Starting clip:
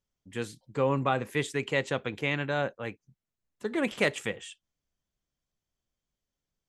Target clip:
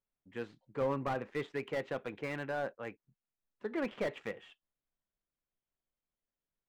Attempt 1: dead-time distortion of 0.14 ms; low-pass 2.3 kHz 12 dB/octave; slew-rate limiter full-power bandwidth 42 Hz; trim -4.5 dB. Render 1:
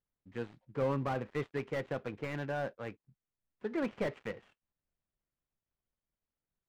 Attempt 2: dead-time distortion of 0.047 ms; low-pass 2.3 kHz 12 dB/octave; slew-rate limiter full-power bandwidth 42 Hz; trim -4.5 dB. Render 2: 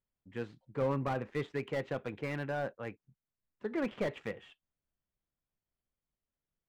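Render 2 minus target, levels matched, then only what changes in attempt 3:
125 Hz band +5.0 dB
add after low-pass: peaking EQ 83 Hz -8.5 dB 2.3 oct

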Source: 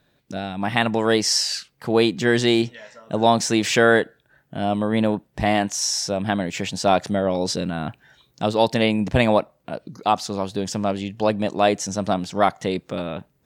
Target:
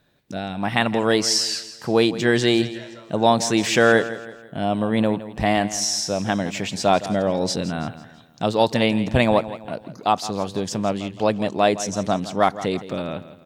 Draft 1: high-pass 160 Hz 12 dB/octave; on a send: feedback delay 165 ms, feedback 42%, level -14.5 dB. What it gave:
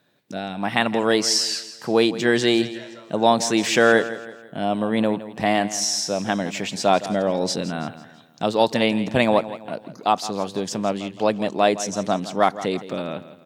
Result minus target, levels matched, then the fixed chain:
125 Hz band -4.5 dB
on a send: feedback delay 165 ms, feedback 42%, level -14.5 dB

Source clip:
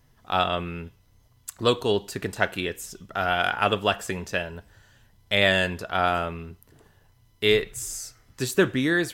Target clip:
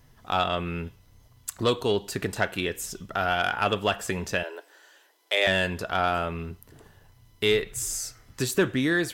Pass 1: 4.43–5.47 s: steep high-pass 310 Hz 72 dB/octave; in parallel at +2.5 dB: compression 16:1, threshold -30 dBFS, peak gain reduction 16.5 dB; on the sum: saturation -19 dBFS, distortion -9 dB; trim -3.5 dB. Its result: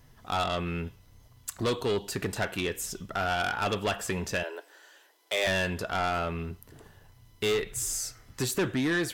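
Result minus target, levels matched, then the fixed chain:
saturation: distortion +13 dB
4.43–5.47 s: steep high-pass 310 Hz 72 dB/octave; in parallel at +2.5 dB: compression 16:1, threshold -30 dBFS, peak gain reduction 16.5 dB; on the sum: saturation -7.5 dBFS, distortion -22 dB; trim -3.5 dB

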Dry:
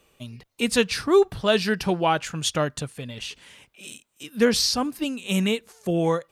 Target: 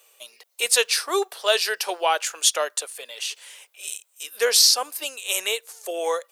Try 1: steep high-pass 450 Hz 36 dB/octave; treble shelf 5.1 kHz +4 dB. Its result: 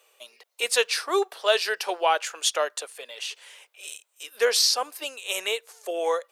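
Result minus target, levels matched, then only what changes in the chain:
8 kHz band -3.5 dB
change: treble shelf 5.1 kHz +14.5 dB

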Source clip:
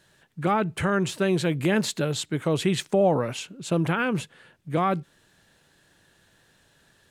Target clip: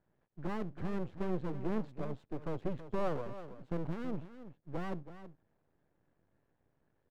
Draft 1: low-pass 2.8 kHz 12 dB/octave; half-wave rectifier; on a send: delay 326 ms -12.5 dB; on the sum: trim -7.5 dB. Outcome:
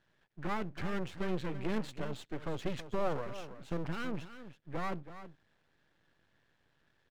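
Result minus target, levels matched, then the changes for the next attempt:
2 kHz band +6.5 dB
change: low-pass 750 Hz 12 dB/octave

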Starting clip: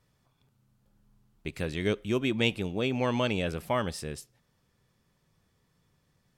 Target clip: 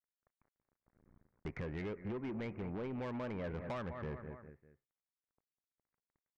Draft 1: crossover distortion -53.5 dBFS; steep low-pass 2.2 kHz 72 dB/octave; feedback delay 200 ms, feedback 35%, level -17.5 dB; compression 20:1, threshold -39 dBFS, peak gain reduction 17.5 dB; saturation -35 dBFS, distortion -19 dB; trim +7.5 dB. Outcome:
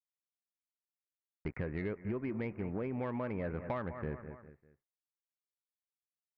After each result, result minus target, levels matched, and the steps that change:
saturation: distortion -10 dB; crossover distortion: distortion +7 dB
change: saturation -44 dBFS, distortion -9 dB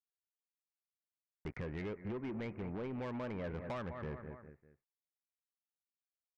crossover distortion: distortion +7 dB
change: crossover distortion -62 dBFS

